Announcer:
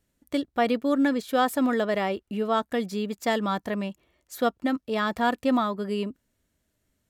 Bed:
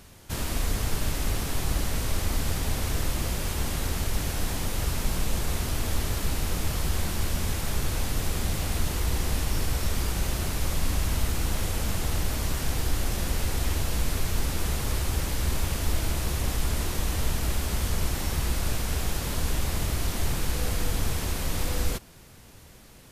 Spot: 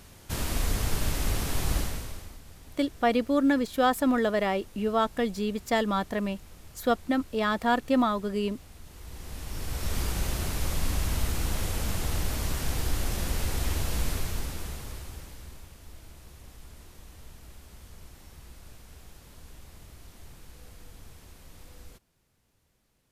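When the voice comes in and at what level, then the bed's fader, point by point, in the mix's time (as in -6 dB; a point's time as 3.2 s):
2.45 s, -0.5 dB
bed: 1.78 s -0.5 dB
2.41 s -21.5 dB
8.82 s -21.5 dB
9.97 s -2 dB
14.08 s -2 dB
15.73 s -21.5 dB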